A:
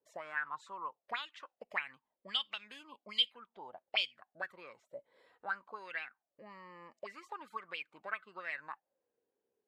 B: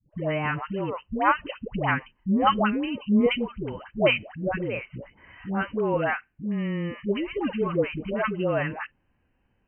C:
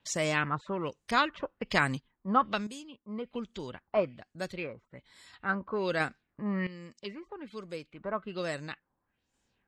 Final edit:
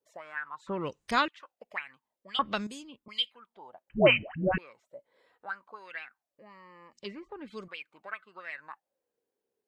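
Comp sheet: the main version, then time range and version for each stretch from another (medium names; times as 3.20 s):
A
0.67–1.28 s: from C
2.39–3.08 s: from C
3.90–4.58 s: from B
6.93–7.68 s: from C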